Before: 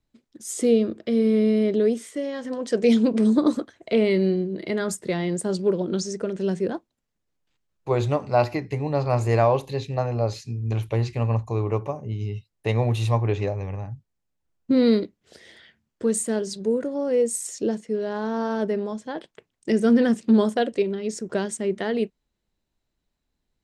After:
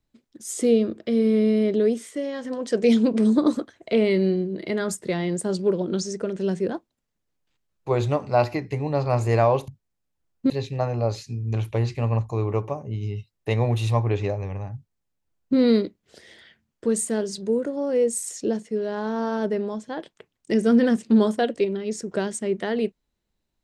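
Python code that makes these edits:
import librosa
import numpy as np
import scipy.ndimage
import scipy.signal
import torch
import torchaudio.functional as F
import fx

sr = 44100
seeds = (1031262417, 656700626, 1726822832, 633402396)

y = fx.edit(x, sr, fx.duplicate(start_s=13.93, length_s=0.82, to_s=9.68), tone=tone)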